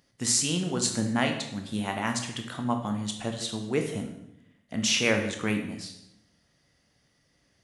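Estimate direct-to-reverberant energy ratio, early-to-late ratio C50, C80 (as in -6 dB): 4.0 dB, 7.0 dB, 10.0 dB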